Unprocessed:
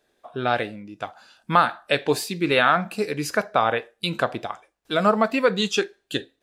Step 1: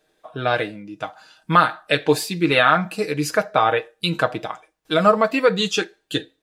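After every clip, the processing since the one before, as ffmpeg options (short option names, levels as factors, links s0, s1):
-af "aecho=1:1:6.4:0.59,volume=1.19"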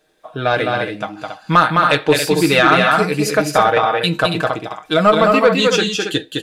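-af "aecho=1:1:209.9|277:0.631|0.398,acontrast=34,volume=0.891"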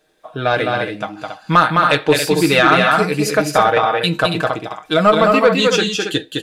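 -af anull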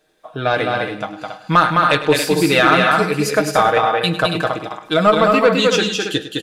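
-af "aecho=1:1:103|206|309|412:0.2|0.0898|0.0404|0.0182,volume=0.891"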